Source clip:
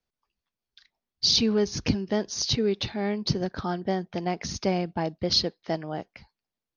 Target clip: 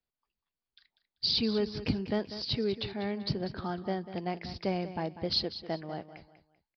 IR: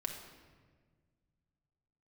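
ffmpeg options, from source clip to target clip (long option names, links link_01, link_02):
-filter_complex "[0:a]aresample=11025,aresample=44100,asettb=1/sr,asplit=3[link_01][link_02][link_03];[link_01]atrim=end=1.884[link_04];[link_02]atrim=start=1.88:end=2.37,asetpts=PTS-STARTPTS,afade=type=in:duration=0.004:curve=qsin,afade=type=out:start_time=0.486:duration=0.004:curve=qsin,aeval=exprs='0.316*(cos(1*acos(clip(val(0)/0.316,-1,1)))-cos(1*PI/2))+0.0141*(cos(5*acos(clip(val(0)/0.316,-1,1)))-cos(5*PI/2))':channel_layout=same[link_05];[link_03]atrim=start=2.366[link_06];[link_04][link_05]acrossfade=duration=0.004:curve1=hsin:curve2=qsin[link_07];[link_07][link_06]acrossfade=duration=0.004:curve1=qsin:curve2=hsin,aecho=1:1:194|388|582:0.224|0.0672|0.0201,volume=-6dB"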